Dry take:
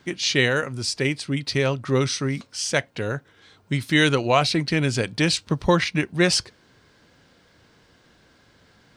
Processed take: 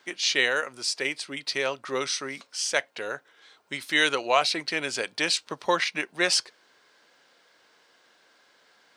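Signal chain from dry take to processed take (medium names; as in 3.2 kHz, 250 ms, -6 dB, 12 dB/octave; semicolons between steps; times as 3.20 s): high-pass 540 Hz 12 dB/octave; trim -1.5 dB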